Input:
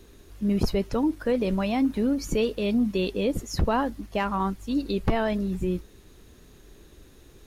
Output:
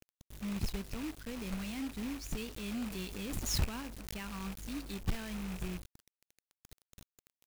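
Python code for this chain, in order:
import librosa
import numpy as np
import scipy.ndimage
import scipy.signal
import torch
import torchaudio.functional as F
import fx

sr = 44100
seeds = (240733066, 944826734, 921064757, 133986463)

y = fx.rattle_buzz(x, sr, strikes_db=-33.0, level_db=-27.0)
y = fx.tone_stack(y, sr, knobs='6-0-2')
y = fx.quant_companded(y, sr, bits=4)
y = fx.pre_swell(y, sr, db_per_s=57.0, at=(2.55, 4.86))
y = y * 10.0 ** (4.0 / 20.0)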